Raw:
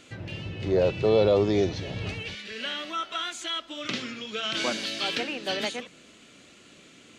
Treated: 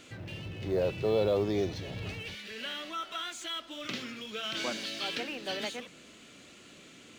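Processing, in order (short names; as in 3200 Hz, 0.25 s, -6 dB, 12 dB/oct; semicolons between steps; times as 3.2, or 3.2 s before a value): G.711 law mismatch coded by mu; gain -7 dB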